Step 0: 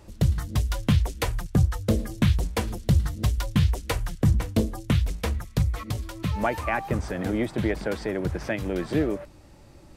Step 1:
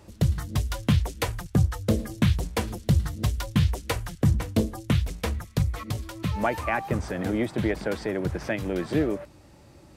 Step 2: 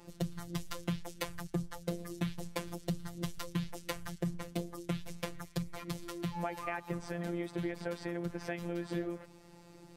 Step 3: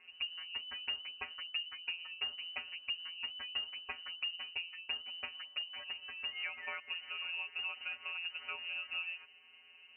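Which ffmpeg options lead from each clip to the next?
-af "highpass=61"
-af "afftfilt=real='hypot(re,im)*cos(PI*b)':imag='0':win_size=1024:overlap=0.75,acompressor=threshold=0.0178:ratio=3"
-af "lowpass=f=2600:t=q:w=0.5098,lowpass=f=2600:t=q:w=0.6013,lowpass=f=2600:t=q:w=0.9,lowpass=f=2600:t=q:w=2.563,afreqshift=-3000,volume=0.631"

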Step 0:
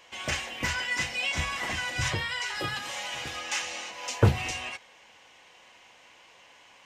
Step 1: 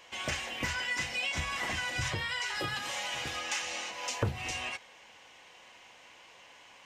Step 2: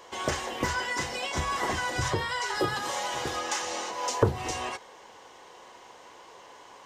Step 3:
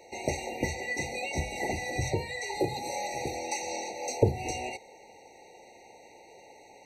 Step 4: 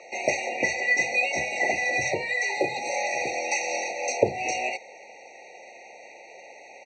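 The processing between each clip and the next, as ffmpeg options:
-af "acompressor=threshold=0.0282:ratio=3"
-af "equalizer=f=400:t=o:w=0.67:g=10,equalizer=f=1000:t=o:w=0.67:g=6,equalizer=f=2500:t=o:w=0.67:g=-10,volume=1.68"
-af "afftfilt=real='re*eq(mod(floor(b*sr/1024/940),2),0)':imag='im*eq(mod(floor(b*sr/1024/940),2),0)':win_size=1024:overlap=0.75"
-af "highpass=330,equalizer=f=450:t=q:w=4:g=-5,equalizer=f=870:t=q:w=4:g=-4,equalizer=f=1200:t=q:w=4:g=8,equalizer=f=2400:t=q:w=4:g=8,equalizer=f=3600:t=q:w=4:g=-9,lowpass=f=6300:w=0.5412,lowpass=f=6300:w=1.3066,aecho=1:1:1.6:0.4,volume=2.24"

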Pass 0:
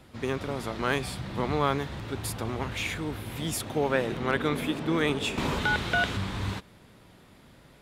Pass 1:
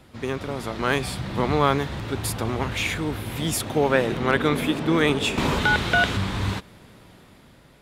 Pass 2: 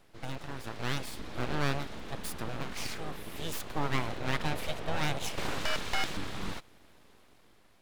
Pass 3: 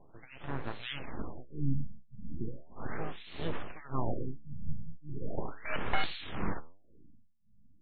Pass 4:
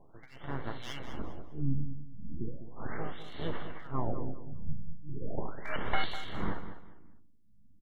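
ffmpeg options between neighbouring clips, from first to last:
-af "dynaudnorm=f=190:g=9:m=1.58,volume=1.26"
-af "aeval=exprs='abs(val(0))':c=same,volume=0.376"
-filter_complex "[0:a]acrossover=split=2300[s0][s1];[s0]aeval=exprs='val(0)*(1-1/2+1/2*cos(2*PI*1.7*n/s))':c=same[s2];[s1]aeval=exprs='val(0)*(1-1/2-1/2*cos(2*PI*1.7*n/s))':c=same[s3];[s2][s3]amix=inputs=2:normalize=0,flanger=delay=6.6:depth=7.9:regen=87:speed=1:shape=sinusoidal,afftfilt=real='re*lt(b*sr/1024,220*pow(4500/220,0.5+0.5*sin(2*PI*0.37*pts/sr)))':imag='im*lt(b*sr/1024,220*pow(4500/220,0.5+0.5*sin(2*PI*0.37*pts/sr)))':win_size=1024:overlap=0.75,volume=2.82"
-filter_complex "[0:a]aeval=exprs='max(val(0),0)':c=same,asuperstop=centerf=2500:order=4:qfactor=5.8,asplit=2[s0][s1];[s1]aecho=0:1:200|400|600:0.282|0.0789|0.0221[s2];[s0][s2]amix=inputs=2:normalize=0"

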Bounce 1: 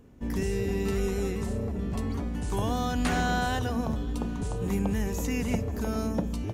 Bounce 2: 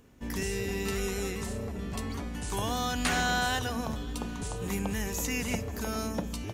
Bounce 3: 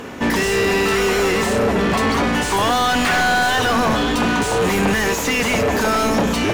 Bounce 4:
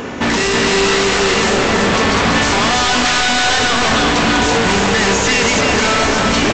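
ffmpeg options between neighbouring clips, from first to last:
-af "tiltshelf=f=970:g=-5.5"
-filter_complex "[0:a]asplit=2[s0][s1];[s1]highpass=f=720:p=1,volume=63.1,asoftclip=type=tanh:threshold=0.211[s2];[s0][s2]amix=inputs=2:normalize=0,lowpass=f=1800:p=1,volume=0.501,volume=1.88"
-af "aresample=16000,aeval=exprs='0.126*(abs(mod(val(0)/0.126+3,4)-2)-1)':c=same,aresample=44100,aecho=1:1:331:0.668,volume=2.24"

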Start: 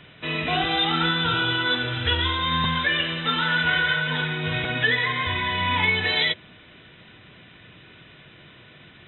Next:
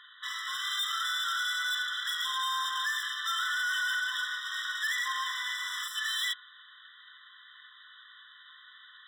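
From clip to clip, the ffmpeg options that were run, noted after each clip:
-af "bandreject=f=60.89:t=h:w=4,bandreject=f=121.78:t=h:w=4,bandreject=f=182.67:t=h:w=4,bandreject=f=243.56:t=h:w=4,bandreject=f=304.45:t=h:w=4,bandreject=f=365.34:t=h:w=4,bandreject=f=426.23:t=h:w=4,bandreject=f=487.12:t=h:w=4,bandreject=f=548.01:t=h:w=4,bandreject=f=608.9:t=h:w=4,bandreject=f=669.79:t=h:w=4,bandreject=f=730.68:t=h:w=4,bandreject=f=791.57:t=h:w=4,bandreject=f=852.46:t=h:w=4,bandreject=f=913.35:t=h:w=4,bandreject=f=974.24:t=h:w=4,bandreject=f=1035.13:t=h:w=4,bandreject=f=1096.02:t=h:w=4,bandreject=f=1156.91:t=h:w=4,bandreject=f=1217.8:t=h:w=4,bandreject=f=1278.69:t=h:w=4,bandreject=f=1339.58:t=h:w=4,bandreject=f=1400.47:t=h:w=4,bandreject=f=1461.36:t=h:w=4,bandreject=f=1522.25:t=h:w=4,asoftclip=type=hard:threshold=0.0398,afftfilt=real='re*eq(mod(floor(b*sr/1024/1000),2),1)':imag='im*eq(mod(floor(b*sr/1024/1000),2),1)':win_size=1024:overlap=0.75"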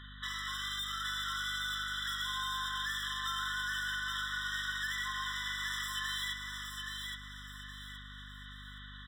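-filter_complex "[0:a]acompressor=threshold=0.0158:ratio=6,asplit=2[s0][s1];[s1]aecho=0:1:821|1642|2463|3284:0.596|0.203|0.0689|0.0234[s2];[s0][s2]amix=inputs=2:normalize=0,aeval=exprs='val(0)+0.00316*(sin(2*PI*50*n/s)+sin(2*PI*2*50*n/s)/2+sin(2*PI*3*50*n/s)/3+sin(2*PI*4*50*n/s)/4+sin(2*PI*5*50*n/s)/5)':c=same"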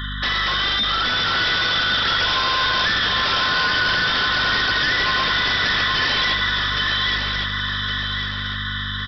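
-af "aresample=11025,aeval=exprs='0.0562*sin(PI/2*3.55*val(0)/0.0562)':c=same,aresample=44100,aecho=1:1:1111|2222|3333|4444:0.501|0.18|0.065|0.0234,volume=2.37"

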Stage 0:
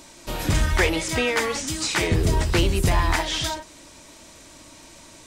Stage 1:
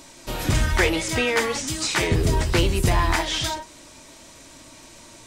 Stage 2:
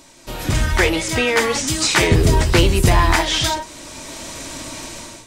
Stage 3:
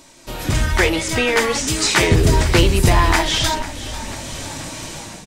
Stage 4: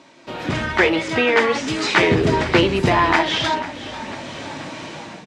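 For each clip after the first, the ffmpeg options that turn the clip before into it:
-af "flanger=delay=7.2:depth=1.9:regen=74:speed=0.46:shape=triangular,volume=1.78"
-af "dynaudnorm=f=200:g=5:m=5.96,volume=0.891"
-filter_complex "[0:a]asplit=8[s0][s1][s2][s3][s4][s5][s6][s7];[s1]adelay=494,afreqshift=-47,volume=0.168[s8];[s2]adelay=988,afreqshift=-94,volume=0.107[s9];[s3]adelay=1482,afreqshift=-141,volume=0.0684[s10];[s4]adelay=1976,afreqshift=-188,volume=0.0442[s11];[s5]adelay=2470,afreqshift=-235,volume=0.0282[s12];[s6]adelay=2964,afreqshift=-282,volume=0.018[s13];[s7]adelay=3458,afreqshift=-329,volume=0.0115[s14];[s0][s8][s9][s10][s11][s12][s13][s14]amix=inputs=8:normalize=0"
-af "highpass=170,lowpass=3100,volume=1.19"

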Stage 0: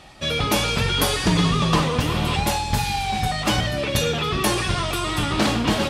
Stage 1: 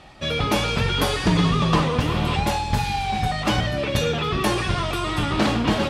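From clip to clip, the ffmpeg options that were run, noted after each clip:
-af "aemphasis=mode=reproduction:type=cd"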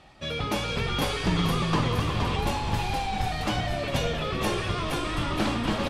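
-filter_complex "[0:a]asplit=8[s0][s1][s2][s3][s4][s5][s6][s7];[s1]adelay=469,afreqshift=-56,volume=0.631[s8];[s2]adelay=938,afreqshift=-112,volume=0.335[s9];[s3]adelay=1407,afreqshift=-168,volume=0.178[s10];[s4]adelay=1876,afreqshift=-224,volume=0.0944[s11];[s5]adelay=2345,afreqshift=-280,volume=0.0495[s12];[s6]adelay=2814,afreqshift=-336,volume=0.0263[s13];[s7]adelay=3283,afreqshift=-392,volume=0.014[s14];[s0][s8][s9][s10][s11][s12][s13][s14]amix=inputs=8:normalize=0,volume=0.447"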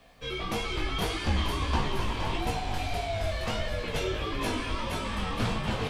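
-af "acrusher=bits=10:mix=0:aa=0.000001,flanger=delay=15.5:depth=5.9:speed=1.6,afreqshift=-98"

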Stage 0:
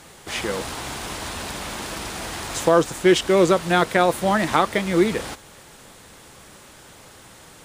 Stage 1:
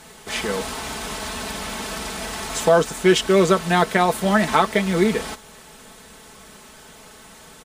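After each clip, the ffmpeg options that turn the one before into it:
-af "aecho=1:1:4.6:0.65"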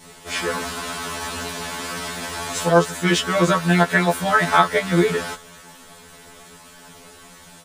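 -af "adynamicequalizer=threshold=0.0158:dfrequency=1500:dqfactor=2.1:tfrequency=1500:tqfactor=2.1:attack=5:release=100:ratio=0.375:range=3:mode=boostabove:tftype=bell,afftfilt=real='re*2*eq(mod(b,4),0)':imag='im*2*eq(mod(b,4),0)':win_size=2048:overlap=0.75,volume=1.33"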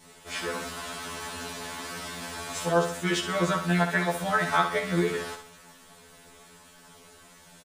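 -af "aecho=1:1:63|126|189|252|315:0.376|0.158|0.0663|0.0278|0.0117,volume=0.376"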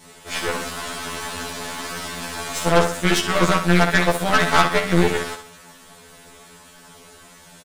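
-af "aeval=exprs='0.335*(cos(1*acos(clip(val(0)/0.335,-1,1)))-cos(1*PI/2))+0.0531*(cos(8*acos(clip(val(0)/0.335,-1,1)))-cos(8*PI/2))':c=same,volume=2.11"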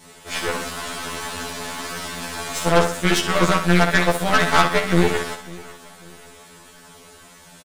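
-af "aecho=1:1:545|1090|1635:0.0891|0.0321|0.0116"

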